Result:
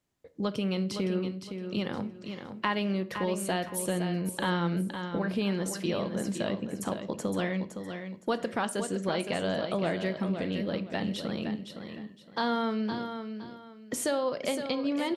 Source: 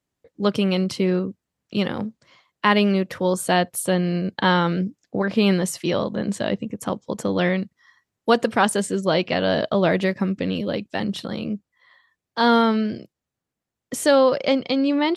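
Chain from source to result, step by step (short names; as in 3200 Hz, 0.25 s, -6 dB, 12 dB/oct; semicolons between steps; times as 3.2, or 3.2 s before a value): compressor 2.5:1, threshold -33 dBFS, peak gain reduction 14 dB; feedback echo 0.514 s, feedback 27%, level -8 dB; on a send at -12 dB: reverb RT60 0.50 s, pre-delay 5 ms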